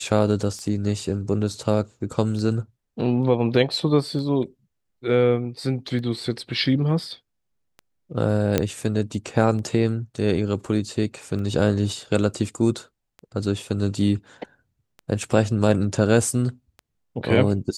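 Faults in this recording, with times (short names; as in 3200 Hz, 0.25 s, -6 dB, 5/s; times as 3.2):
tick 33 1/3 rpm -25 dBFS
8.58 pop -5 dBFS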